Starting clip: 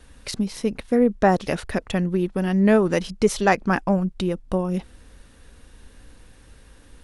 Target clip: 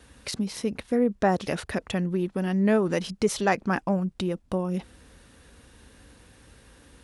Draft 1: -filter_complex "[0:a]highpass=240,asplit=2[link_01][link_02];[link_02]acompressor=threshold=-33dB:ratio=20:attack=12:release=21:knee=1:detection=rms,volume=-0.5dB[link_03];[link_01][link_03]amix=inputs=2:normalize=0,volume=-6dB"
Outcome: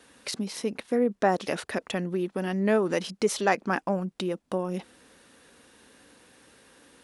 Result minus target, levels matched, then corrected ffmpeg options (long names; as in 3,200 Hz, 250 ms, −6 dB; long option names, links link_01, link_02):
125 Hz band −3.5 dB
-filter_complex "[0:a]highpass=66,asplit=2[link_01][link_02];[link_02]acompressor=threshold=-33dB:ratio=20:attack=12:release=21:knee=1:detection=rms,volume=-0.5dB[link_03];[link_01][link_03]amix=inputs=2:normalize=0,volume=-6dB"